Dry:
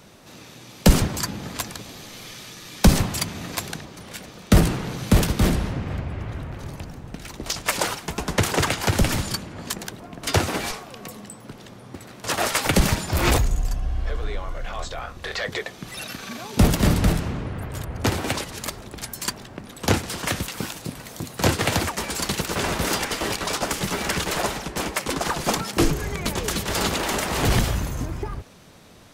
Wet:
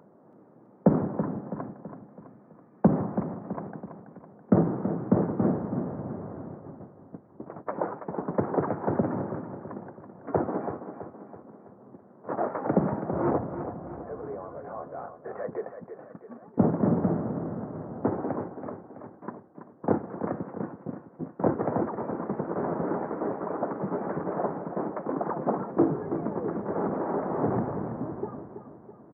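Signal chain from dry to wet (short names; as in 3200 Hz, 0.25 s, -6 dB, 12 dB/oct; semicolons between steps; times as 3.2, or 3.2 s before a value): gate -32 dBFS, range -20 dB; Bessel high-pass 220 Hz, order 4; upward compressor, threshold -38 dBFS; Gaussian blur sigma 8.8 samples; on a send: feedback echo 0.329 s, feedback 49%, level -9.5 dB; on the sum: gain +1 dB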